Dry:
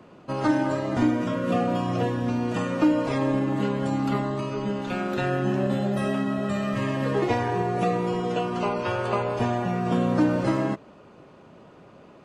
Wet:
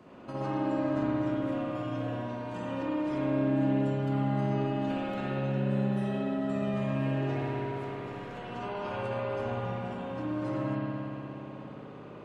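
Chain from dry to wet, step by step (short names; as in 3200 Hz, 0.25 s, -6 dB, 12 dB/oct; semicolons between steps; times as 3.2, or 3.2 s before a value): compressor 6:1, threshold -34 dBFS, peak gain reduction 16.5 dB; 7.35–8.38 hard clip -39.5 dBFS, distortion -16 dB; spring tank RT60 3.4 s, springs 59 ms, chirp 45 ms, DRR -8 dB; gain -5.5 dB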